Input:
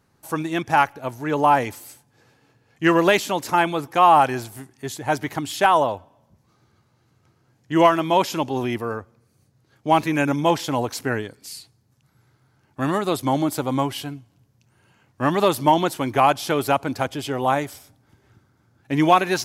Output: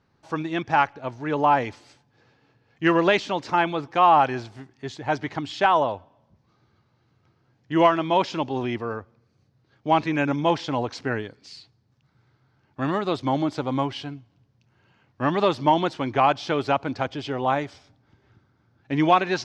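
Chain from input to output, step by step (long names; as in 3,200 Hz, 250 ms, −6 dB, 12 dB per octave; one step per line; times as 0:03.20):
low-pass filter 5,200 Hz 24 dB per octave
level −2.5 dB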